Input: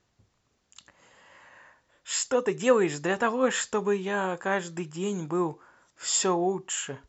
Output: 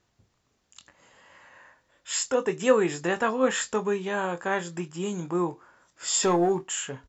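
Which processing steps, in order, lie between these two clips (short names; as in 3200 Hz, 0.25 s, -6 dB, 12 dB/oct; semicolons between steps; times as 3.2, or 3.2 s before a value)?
6.23–6.63 sample leveller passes 1; doubler 23 ms -10 dB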